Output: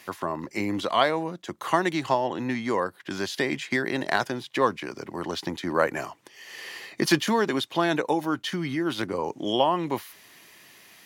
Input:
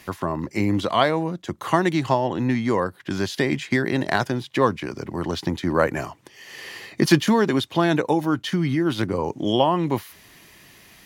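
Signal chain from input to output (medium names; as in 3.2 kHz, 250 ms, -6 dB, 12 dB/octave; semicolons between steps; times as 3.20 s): high-pass 380 Hz 6 dB/octave; trim -1.5 dB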